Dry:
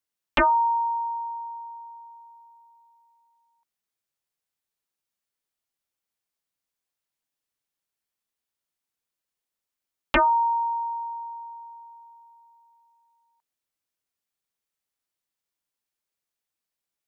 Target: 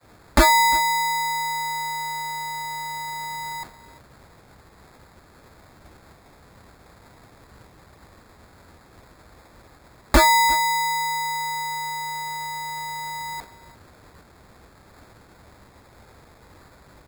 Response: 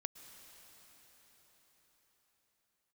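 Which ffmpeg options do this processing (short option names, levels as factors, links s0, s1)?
-filter_complex "[0:a]aeval=exprs='val(0)+0.5*0.0355*sgn(val(0))':c=same,lowpass=f=1300:p=1,agate=range=0.0224:threshold=0.0158:ratio=3:detection=peak,equalizer=f=68:t=o:w=2.1:g=12,aecho=1:1:349:0.0944,asplit=2[s0][s1];[s1]acompressor=threshold=0.0112:ratio=6,volume=0.891[s2];[s0][s2]amix=inputs=2:normalize=0,acrusher=samples=15:mix=1:aa=0.000001,adynamicequalizer=threshold=0.00316:dfrequency=110:dqfactor=0.71:tfrequency=110:tqfactor=0.71:attack=5:release=100:ratio=0.375:range=3:mode=cutabove:tftype=bell,volume=1.5"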